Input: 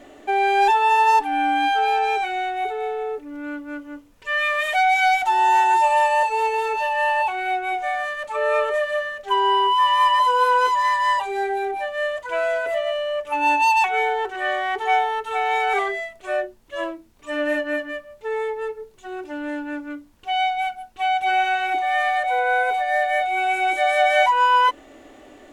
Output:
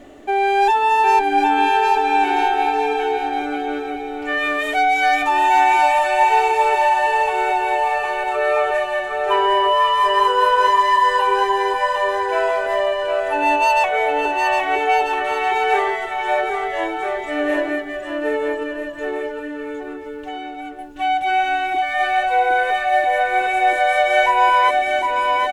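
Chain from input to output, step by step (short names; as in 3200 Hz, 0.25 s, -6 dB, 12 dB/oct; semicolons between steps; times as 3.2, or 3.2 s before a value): low shelf 350 Hz +7 dB; 18.63–20.79 compressor, threshold -31 dBFS, peak gain reduction 13.5 dB; bouncing-ball echo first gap 0.76 s, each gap 0.7×, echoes 5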